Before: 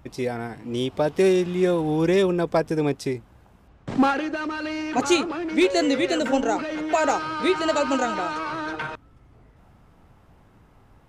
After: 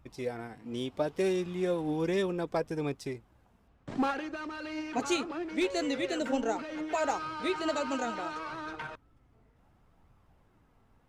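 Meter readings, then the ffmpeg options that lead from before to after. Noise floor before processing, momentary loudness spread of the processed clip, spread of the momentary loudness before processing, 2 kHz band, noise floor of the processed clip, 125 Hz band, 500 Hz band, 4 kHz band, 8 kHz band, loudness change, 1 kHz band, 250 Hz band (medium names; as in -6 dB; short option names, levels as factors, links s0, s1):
-55 dBFS, 10 LU, 10 LU, -9.5 dB, -66 dBFS, -10.0 dB, -9.5 dB, -9.5 dB, -9.0 dB, -9.5 dB, -9.5 dB, -10.0 dB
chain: -filter_complex "[0:a]flanger=delay=0.8:depth=3.7:regen=68:speed=0.69:shape=sinusoidal,asplit=2[s0][s1];[s1]aeval=exprs='sgn(val(0))*max(abs(val(0))-0.00891,0)':c=same,volume=0.251[s2];[s0][s2]amix=inputs=2:normalize=0,volume=0.473"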